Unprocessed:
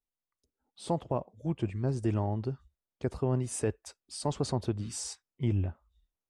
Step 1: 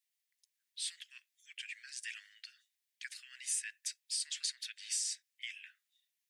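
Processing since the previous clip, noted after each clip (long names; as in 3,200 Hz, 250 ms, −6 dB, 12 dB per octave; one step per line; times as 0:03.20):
Butterworth high-pass 1,700 Hz 72 dB per octave
downward compressor 6 to 1, threshold −42 dBFS, peak gain reduction 8.5 dB
level +9 dB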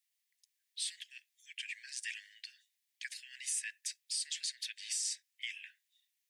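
Butterworth high-pass 1,600 Hz 72 dB per octave
brickwall limiter −28.5 dBFS, peak gain reduction 6 dB
level +2.5 dB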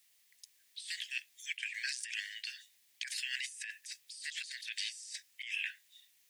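compressor whose output falls as the input rises −50 dBFS, ratio −1
level +7.5 dB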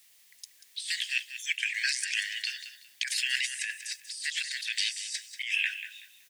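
repeating echo 188 ms, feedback 25%, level −11.5 dB
level +9 dB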